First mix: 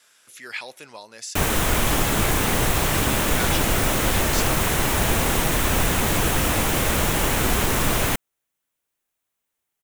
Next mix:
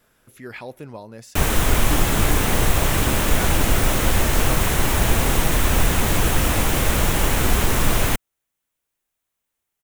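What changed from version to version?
speech: remove meter weighting curve ITU-R 468
background: add low-shelf EQ 74 Hz +8 dB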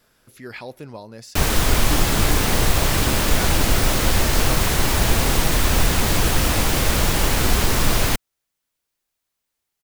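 master: add parametric band 4,700 Hz +7.5 dB 0.58 octaves

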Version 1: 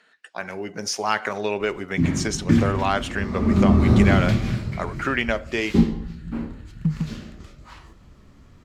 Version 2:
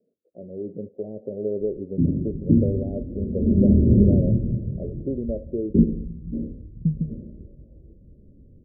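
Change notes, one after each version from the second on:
master: add Butterworth low-pass 570 Hz 72 dB per octave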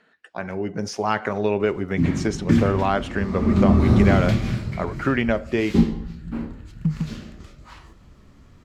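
speech: add spectral tilt −3 dB per octave
master: remove Butterworth low-pass 570 Hz 72 dB per octave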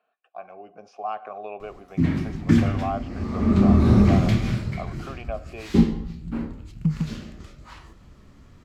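speech: add formant filter a

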